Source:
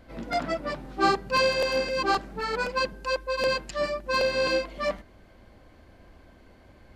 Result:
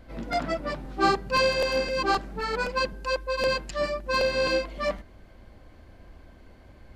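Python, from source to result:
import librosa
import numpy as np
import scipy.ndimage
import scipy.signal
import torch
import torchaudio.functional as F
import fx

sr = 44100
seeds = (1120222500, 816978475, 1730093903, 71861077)

y = fx.low_shelf(x, sr, hz=93.0, db=6.5)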